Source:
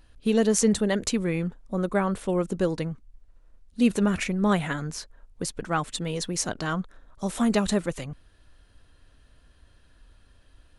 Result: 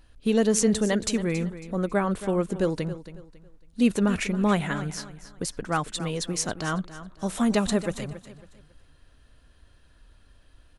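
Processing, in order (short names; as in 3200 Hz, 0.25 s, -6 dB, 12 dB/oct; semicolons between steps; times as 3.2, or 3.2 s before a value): feedback echo 0.275 s, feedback 31%, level -14 dB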